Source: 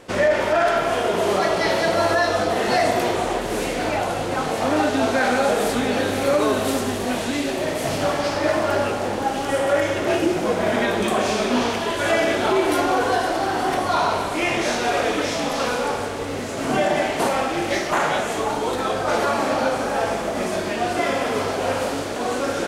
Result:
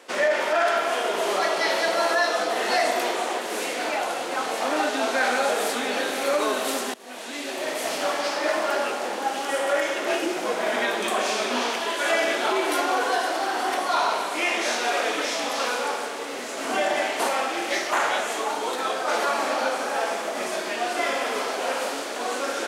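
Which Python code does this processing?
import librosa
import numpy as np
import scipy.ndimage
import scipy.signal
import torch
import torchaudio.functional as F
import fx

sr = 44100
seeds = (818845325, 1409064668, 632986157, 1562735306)

y = fx.edit(x, sr, fx.fade_in_from(start_s=6.94, length_s=0.76, floor_db=-22.5), tone=tone)
y = scipy.signal.sosfilt(scipy.signal.butter(4, 220.0, 'highpass', fs=sr, output='sos'), y)
y = fx.low_shelf(y, sr, hz=460.0, db=-11.5)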